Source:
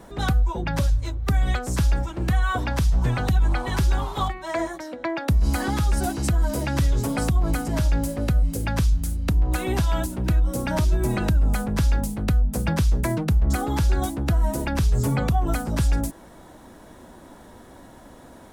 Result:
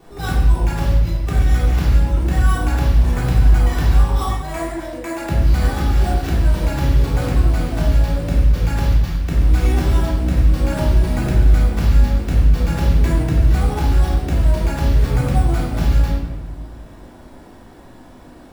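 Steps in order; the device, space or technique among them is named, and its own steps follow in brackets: early companding sampler (sample-rate reducer 9 kHz, jitter 0%; companded quantiser 6-bit); simulated room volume 660 m³, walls mixed, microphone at 3.5 m; trim -6 dB

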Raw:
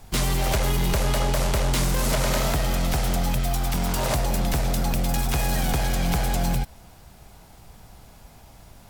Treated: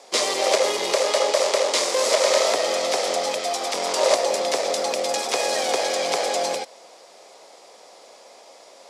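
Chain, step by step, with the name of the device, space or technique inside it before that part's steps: phone speaker on a table (cabinet simulation 400–8700 Hz, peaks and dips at 530 Hz +8 dB, 850 Hz -4 dB, 1.5 kHz -9 dB, 2.8 kHz -4 dB, 5 kHz +3 dB, 8.6 kHz -3 dB); 0.92–2.51 s: high-pass 290 Hz 6 dB/octave; trim +7 dB

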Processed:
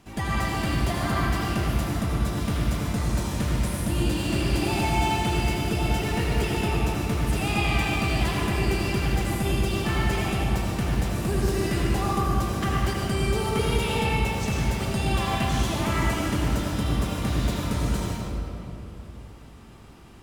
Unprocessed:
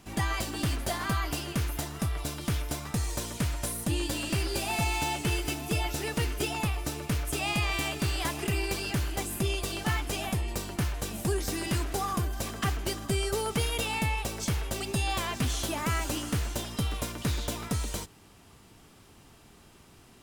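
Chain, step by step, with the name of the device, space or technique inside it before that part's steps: swimming-pool hall (reverberation RT60 3.1 s, pre-delay 70 ms, DRR -4.5 dB; treble shelf 4.4 kHz -6 dB)

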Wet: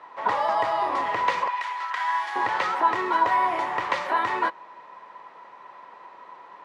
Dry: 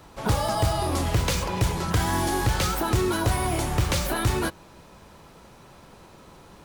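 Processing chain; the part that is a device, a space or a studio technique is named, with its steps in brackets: tin-can telephone (band-pass 590–2200 Hz; small resonant body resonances 1/1.9 kHz, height 13 dB, ringing for 30 ms); 1.48–2.36 s: high-pass 1.4 kHz 12 dB/octave; trim +2.5 dB

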